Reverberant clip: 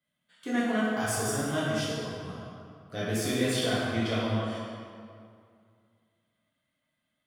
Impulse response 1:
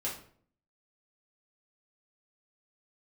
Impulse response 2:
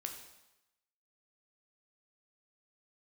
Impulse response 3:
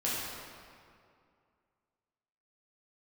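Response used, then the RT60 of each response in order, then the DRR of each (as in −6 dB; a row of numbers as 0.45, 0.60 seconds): 3; 0.55, 0.95, 2.3 seconds; −6.5, 3.0, −8.0 decibels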